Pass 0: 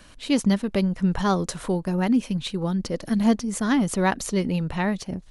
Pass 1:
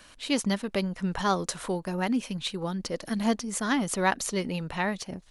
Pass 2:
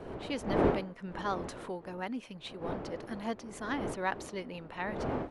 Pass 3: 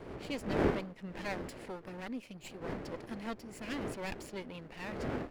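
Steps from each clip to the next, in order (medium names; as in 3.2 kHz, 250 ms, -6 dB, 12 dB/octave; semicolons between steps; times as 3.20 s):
bass shelf 360 Hz -10 dB
wind noise 390 Hz -27 dBFS; tone controls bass -8 dB, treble -11 dB; trim -7.5 dB
comb filter that takes the minimum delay 0.41 ms; trim -2 dB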